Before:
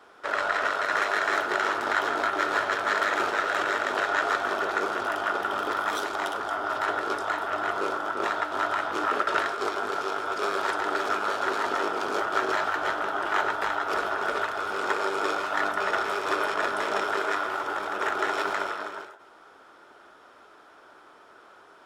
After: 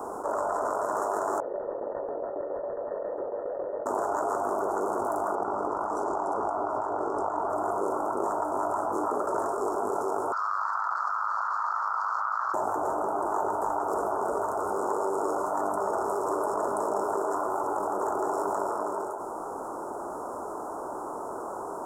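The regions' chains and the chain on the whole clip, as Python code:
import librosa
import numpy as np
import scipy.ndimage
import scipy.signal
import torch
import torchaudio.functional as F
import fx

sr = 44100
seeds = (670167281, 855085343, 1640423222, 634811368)

y = fx.chain(x, sr, fx.cvsd(bps=32000),
    fx.formant_cascade(vowel='e'),
    fx.tremolo_shape(shape='saw_down', hz=7.3, depth_pct=70), at=(1.4, 3.86))
y = fx.chain(y, sr, fx.lowpass(hz=5100.0, slope=12),
    fx.over_compress(threshold_db=-32.0, ratio=-1.0), at=(5.35, 7.5))
y = fx.chain(y, sr, fx.ellip_bandpass(low_hz=1200.0, high_hz=4500.0, order=3, stop_db=60),
    fx.env_flatten(amount_pct=100), at=(10.32, 12.54))
y = scipy.signal.sosfilt(scipy.signal.ellip(3, 1.0, 70, [1000.0, 7400.0], 'bandstop', fs=sr, output='sos'), y)
y = fx.peak_eq(y, sr, hz=81.0, db=-2.5, octaves=2.4)
y = fx.env_flatten(y, sr, amount_pct=70)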